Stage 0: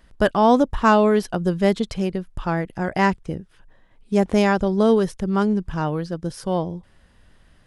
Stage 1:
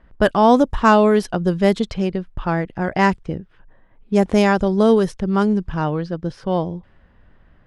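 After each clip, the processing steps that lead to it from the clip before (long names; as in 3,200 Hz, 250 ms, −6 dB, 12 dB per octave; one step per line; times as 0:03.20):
low-pass that shuts in the quiet parts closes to 1,800 Hz, open at −14 dBFS
level +2.5 dB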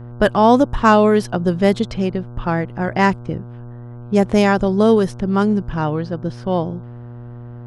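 hum with harmonics 120 Hz, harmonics 13, −35 dBFS −9 dB per octave
level +1 dB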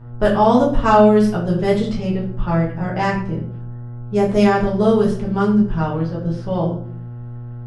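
rectangular room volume 59 cubic metres, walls mixed, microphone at 1.3 metres
level −9 dB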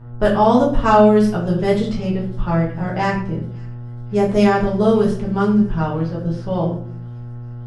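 delay with a high-pass on its return 551 ms, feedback 66%, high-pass 2,200 Hz, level −24 dB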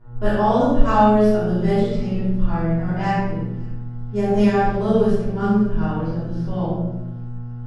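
rectangular room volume 270 cubic metres, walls mixed, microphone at 3.2 metres
level −13.5 dB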